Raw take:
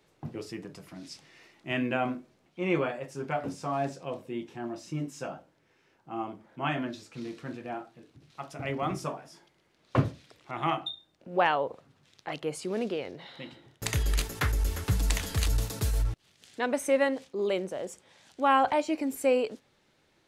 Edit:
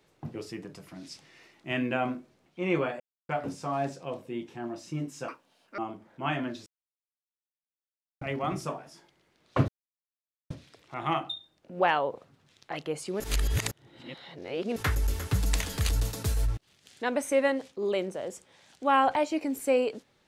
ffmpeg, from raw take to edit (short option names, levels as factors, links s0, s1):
-filter_complex "[0:a]asplit=10[s0][s1][s2][s3][s4][s5][s6][s7][s8][s9];[s0]atrim=end=3,asetpts=PTS-STARTPTS,afade=t=out:st=2.996:d=0.004:c=hsin[s10];[s1]atrim=start=3:end=3.29,asetpts=PTS-STARTPTS,volume=0[s11];[s2]atrim=start=3.29:end=5.284,asetpts=PTS-STARTPTS,afade=t=in:d=0.004:c=hsin[s12];[s3]atrim=start=5.28:end=6.17,asetpts=PTS-STARTPTS,asetrate=78057,aresample=44100[s13];[s4]atrim=start=6.166:end=7.05,asetpts=PTS-STARTPTS,afade=t=out:st=0.88:d=0.004:c=hsin[s14];[s5]atrim=start=7.05:end=8.6,asetpts=PTS-STARTPTS,volume=0[s15];[s6]atrim=start=8.6:end=10.07,asetpts=PTS-STARTPTS,afade=t=in:d=0.004:c=hsin,afade=t=out:st=1.466:d=0.004:c=hsin,apad=pad_dur=0.82[s16];[s7]atrim=start=10.07:end=12.772,asetpts=PTS-STARTPTS,afade=t=in:d=0.004:c=hsin[s17];[s8]atrim=start=12.768:end=14.332,asetpts=PTS-STARTPTS,areverse[s18];[s9]atrim=start=14.328[s19];[s10][s11][s12]concat=n=3:v=0:a=1[s20];[s20][s13]acrossfade=d=0.004:c1=hsin:c2=hsin[s21];[s14][s15][s16][s17]concat=n=4:v=0:a=1[s22];[s21][s22]acrossfade=d=0.004:c1=hsin:c2=hsin[s23];[s23][s18]acrossfade=d=0.004:c1=hsin:c2=hsin[s24];[s24][s19]acrossfade=d=0.004:c1=hsin:c2=hsin"